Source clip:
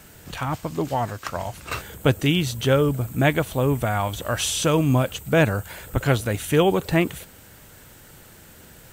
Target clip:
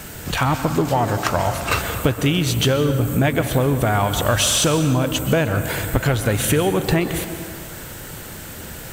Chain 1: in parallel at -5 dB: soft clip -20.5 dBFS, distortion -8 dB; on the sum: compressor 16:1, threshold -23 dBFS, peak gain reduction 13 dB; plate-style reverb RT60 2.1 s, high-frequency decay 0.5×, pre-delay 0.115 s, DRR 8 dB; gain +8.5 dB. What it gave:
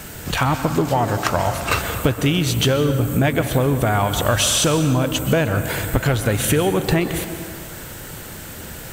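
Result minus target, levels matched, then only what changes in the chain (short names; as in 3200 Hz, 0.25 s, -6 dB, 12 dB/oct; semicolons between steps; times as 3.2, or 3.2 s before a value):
soft clip: distortion -6 dB
change: soft clip -30.5 dBFS, distortion -3 dB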